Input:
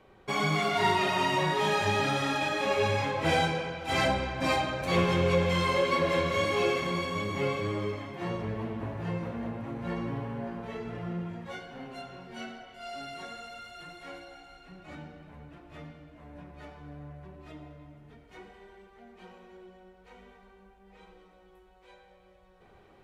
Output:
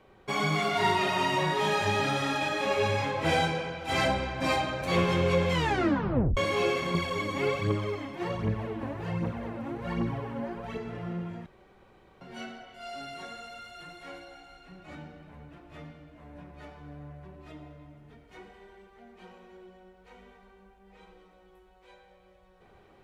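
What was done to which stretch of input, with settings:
0:05.53: tape stop 0.84 s
0:06.94–0:10.78: phase shifter 1.3 Hz, delay 4 ms, feedback 57%
0:11.46–0:12.21: fill with room tone

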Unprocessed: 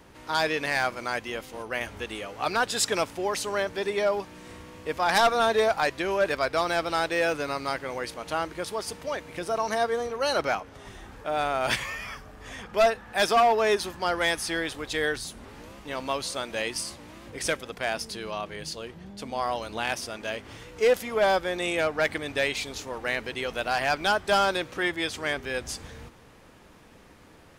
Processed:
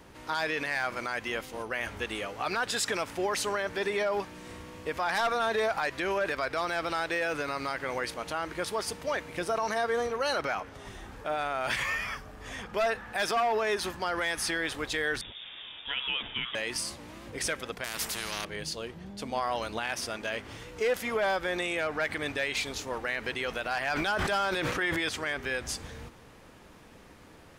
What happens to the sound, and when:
0:15.21–0:16.55: voice inversion scrambler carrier 3,600 Hz
0:17.84–0:18.45: every bin compressed towards the loudest bin 4 to 1
0:23.79–0:25.09: level that may fall only so fast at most 27 dB per second
whole clip: dynamic equaliser 1,700 Hz, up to +5 dB, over −40 dBFS, Q 0.98; brickwall limiter −20.5 dBFS

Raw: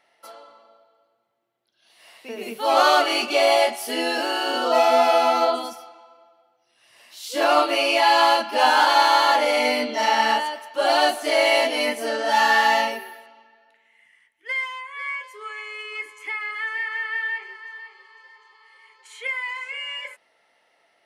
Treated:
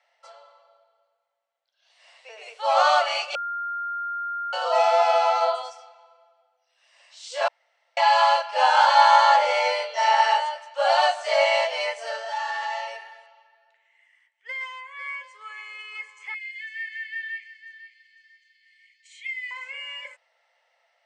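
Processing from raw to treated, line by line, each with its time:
0:03.35–0:04.53: beep over 1,400 Hz −23 dBFS
0:07.48–0:07.97: fill with room tone
0:08.71–0:11.45: double-tracking delay 18 ms −5 dB
0:12.19–0:14.61: downward compressor 3 to 1, threshold −26 dBFS
0:16.34–0:19.51: Chebyshev high-pass filter 1,800 Hz, order 10
whole clip: Chebyshev band-pass filter 510–8,300 Hz, order 5; dynamic equaliser 1,000 Hz, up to +4 dB, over −29 dBFS, Q 1.2; level −4 dB

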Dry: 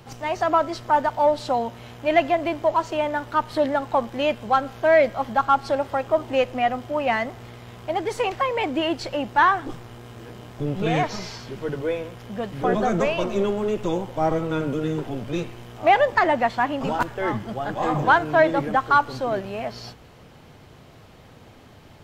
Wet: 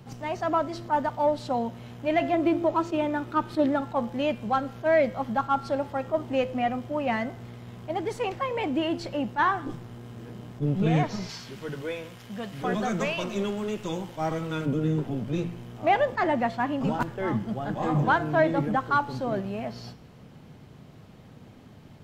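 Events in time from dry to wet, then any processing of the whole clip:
0:02.33–0:03.81: hollow resonant body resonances 340/1,300/2,500/3,600 Hz, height 10 dB
0:11.29–0:14.66: tilt shelving filter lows −7 dB
whole clip: parametric band 180 Hz +10.5 dB 1.6 octaves; hum removal 170.8 Hz, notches 34; level that may rise only so fast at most 390 dB per second; level −6.5 dB

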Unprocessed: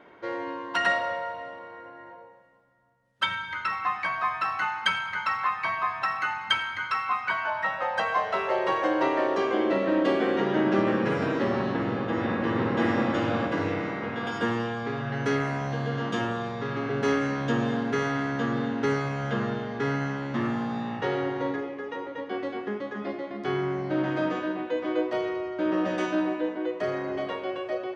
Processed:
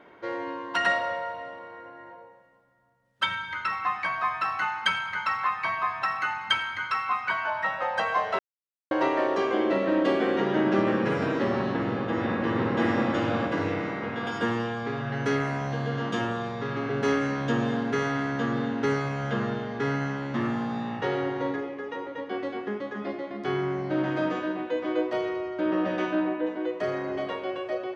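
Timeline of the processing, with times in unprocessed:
0:08.39–0:08.91: silence
0:25.60–0:26.45: low-pass filter 5,200 Hz → 2,700 Hz

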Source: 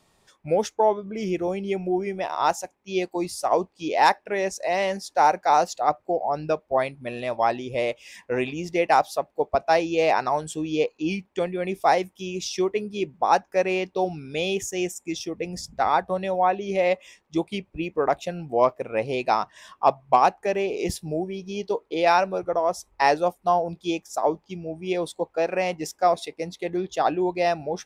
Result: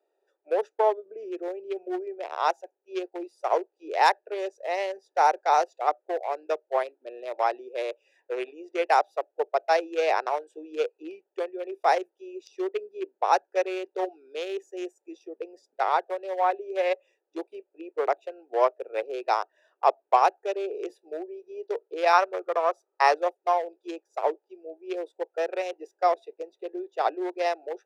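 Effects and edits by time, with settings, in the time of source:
0:22.13–0:23.15: parametric band 1,200 Hz +11.5 dB 0.34 octaves
whole clip: adaptive Wiener filter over 41 samples; Butterworth high-pass 370 Hz 48 dB per octave; level −1.5 dB

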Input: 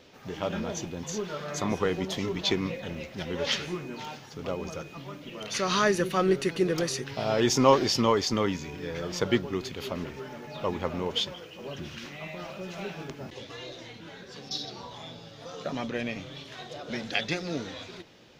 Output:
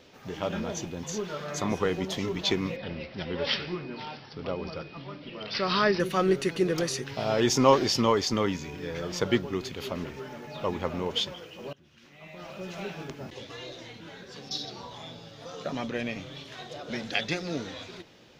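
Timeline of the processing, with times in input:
0:02.76–0:06.00: bad sample-rate conversion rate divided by 4×, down none, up filtered
0:11.73–0:12.62: fade in quadratic, from −22.5 dB

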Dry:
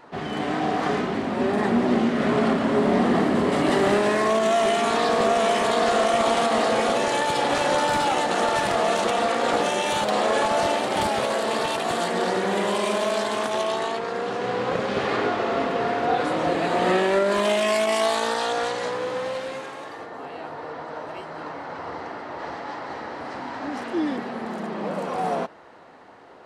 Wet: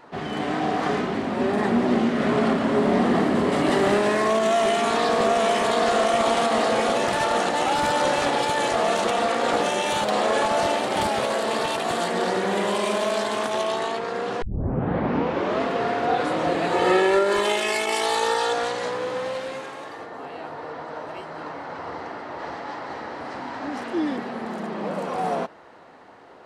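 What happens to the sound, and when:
0:07.07–0:08.73: reverse
0:14.42: tape start 1.21 s
0:16.72–0:18.54: comb filter 2.3 ms, depth 64%

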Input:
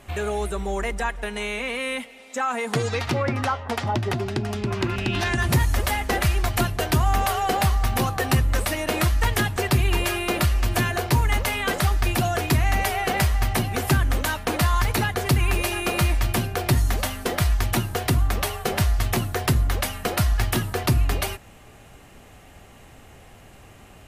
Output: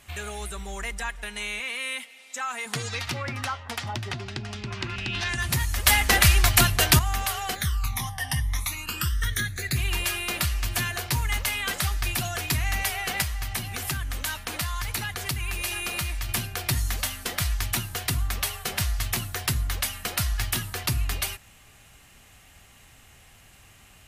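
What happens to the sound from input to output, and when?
0:01.60–0:02.66: high-pass filter 350 Hz 6 dB per octave
0:04.11–0:05.29: low-pass filter 6,300 Hz
0:05.86–0:06.99: clip gain +9 dB
0:07.54–0:09.75: all-pass phaser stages 12, 0.71 Hz → 0.15 Hz, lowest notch 420–1,100 Hz
0:13.22–0:16.29: downward compressor 2 to 1, threshold −23 dBFS
whole clip: guitar amp tone stack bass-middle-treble 5-5-5; level +7.5 dB

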